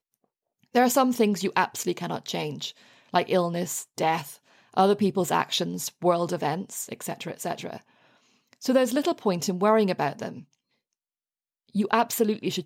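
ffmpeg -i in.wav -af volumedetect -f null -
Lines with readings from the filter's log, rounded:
mean_volume: -26.8 dB
max_volume: -7.5 dB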